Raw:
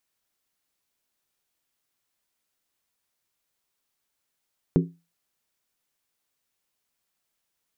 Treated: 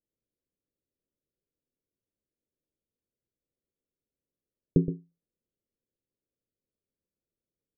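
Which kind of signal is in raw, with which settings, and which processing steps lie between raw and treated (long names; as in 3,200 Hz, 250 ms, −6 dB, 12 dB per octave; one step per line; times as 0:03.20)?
struck skin, lowest mode 169 Hz, decay 0.28 s, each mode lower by 3.5 dB, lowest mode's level −14 dB
Butterworth low-pass 550 Hz 48 dB per octave
on a send: single-tap delay 120 ms −10 dB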